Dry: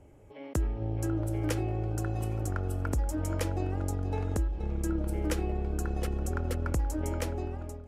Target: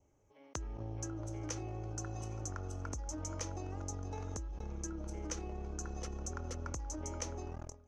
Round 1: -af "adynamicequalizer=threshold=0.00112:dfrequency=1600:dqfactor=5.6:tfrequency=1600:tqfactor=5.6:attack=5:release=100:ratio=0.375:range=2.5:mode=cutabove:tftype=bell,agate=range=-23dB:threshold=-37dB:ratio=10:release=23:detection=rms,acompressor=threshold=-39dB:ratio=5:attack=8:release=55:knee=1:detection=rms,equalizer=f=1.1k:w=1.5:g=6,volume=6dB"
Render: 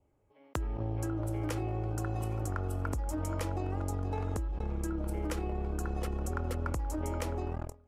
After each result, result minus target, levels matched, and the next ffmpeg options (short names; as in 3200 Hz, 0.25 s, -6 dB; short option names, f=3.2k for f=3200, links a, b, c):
8000 Hz band -11.0 dB; compressor: peak gain reduction -8 dB
-af "adynamicequalizer=threshold=0.00112:dfrequency=1600:dqfactor=5.6:tfrequency=1600:tqfactor=5.6:attack=5:release=100:ratio=0.375:range=2.5:mode=cutabove:tftype=bell,agate=range=-23dB:threshold=-37dB:ratio=10:release=23:detection=rms,acompressor=threshold=-39dB:ratio=5:attack=8:release=55:knee=1:detection=rms,lowpass=f=6.2k:t=q:w=11,equalizer=f=1.1k:w=1.5:g=6,volume=6dB"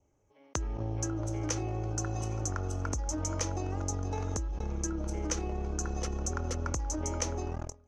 compressor: peak gain reduction -8 dB
-af "adynamicequalizer=threshold=0.00112:dfrequency=1600:dqfactor=5.6:tfrequency=1600:tqfactor=5.6:attack=5:release=100:ratio=0.375:range=2.5:mode=cutabove:tftype=bell,agate=range=-23dB:threshold=-37dB:ratio=10:release=23:detection=rms,acompressor=threshold=-49dB:ratio=5:attack=8:release=55:knee=1:detection=rms,lowpass=f=6.2k:t=q:w=11,equalizer=f=1.1k:w=1.5:g=6,volume=6dB"